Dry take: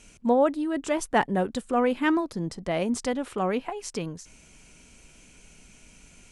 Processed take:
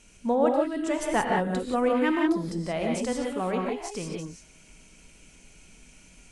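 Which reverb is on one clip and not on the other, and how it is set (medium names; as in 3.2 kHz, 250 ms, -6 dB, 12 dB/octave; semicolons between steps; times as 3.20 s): gated-style reverb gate 200 ms rising, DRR 0 dB; trim -3.5 dB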